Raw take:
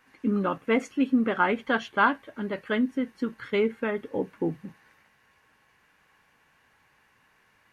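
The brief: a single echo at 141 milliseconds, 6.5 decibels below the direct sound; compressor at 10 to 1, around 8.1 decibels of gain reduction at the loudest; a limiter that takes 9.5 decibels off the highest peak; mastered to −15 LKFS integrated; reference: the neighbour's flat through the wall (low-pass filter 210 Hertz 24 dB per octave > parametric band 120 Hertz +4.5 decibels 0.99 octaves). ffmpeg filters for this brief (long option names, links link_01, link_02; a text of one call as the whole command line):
ffmpeg -i in.wav -af "acompressor=threshold=-25dB:ratio=10,alimiter=level_in=1.5dB:limit=-24dB:level=0:latency=1,volume=-1.5dB,lowpass=frequency=210:width=0.5412,lowpass=frequency=210:width=1.3066,equalizer=frequency=120:width_type=o:width=0.99:gain=4.5,aecho=1:1:141:0.473,volume=26.5dB" out.wav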